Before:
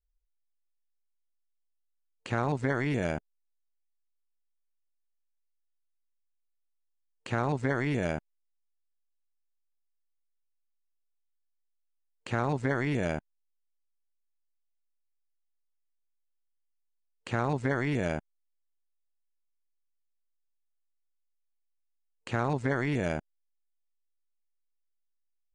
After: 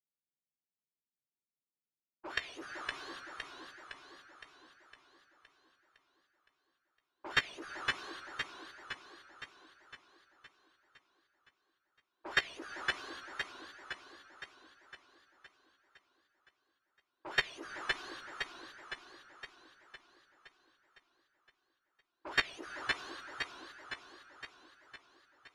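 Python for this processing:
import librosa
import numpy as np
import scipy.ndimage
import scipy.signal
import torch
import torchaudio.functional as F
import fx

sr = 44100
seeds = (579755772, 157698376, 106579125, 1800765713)

y = fx.octave_mirror(x, sr, pivot_hz=1600.0)
y = scipy.signal.sosfilt(scipy.signal.butter(2, 300.0, 'highpass', fs=sr, output='sos'), y)
y = fx.leveller(y, sr, passes=5)
y = fx.env_lowpass(y, sr, base_hz=1100.0, full_db=-26.5)
y = fx.level_steps(y, sr, step_db=23)
y = scipy.signal.sosfilt(scipy.signal.butter(2, 2900.0, 'lowpass', fs=sr, output='sos'), y)
y = fx.doubler(y, sr, ms=15.0, db=-11.5)
y = fx.echo_warbled(y, sr, ms=512, feedback_pct=57, rate_hz=2.8, cents=120, wet_db=-4.0)
y = F.gain(torch.from_numpy(y), 2.5).numpy()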